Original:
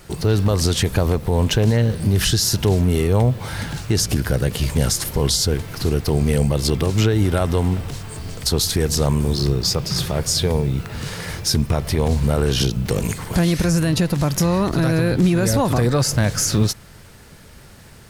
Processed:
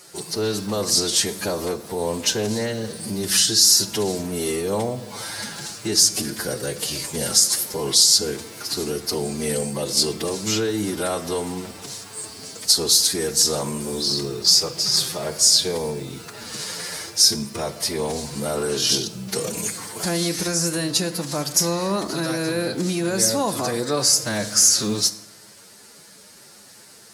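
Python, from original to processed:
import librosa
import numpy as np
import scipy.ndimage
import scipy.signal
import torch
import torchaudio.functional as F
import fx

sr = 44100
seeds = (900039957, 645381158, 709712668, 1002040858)

y = fx.stretch_vocoder(x, sr, factor=1.5)
y = scipy.signal.sosfilt(scipy.signal.butter(2, 260.0, 'highpass', fs=sr, output='sos'), y)
y = fx.band_shelf(y, sr, hz=6800.0, db=9.0, octaves=1.7)
y = fx.rev_fdn(y, sr, rt60_s=1.0, lf_ratio=1.1, hf_ratio=0.6, size_ms=29.0, drr_db=11.0)
y = F.gain(torch.from_numpy(y), -3.0).numpy()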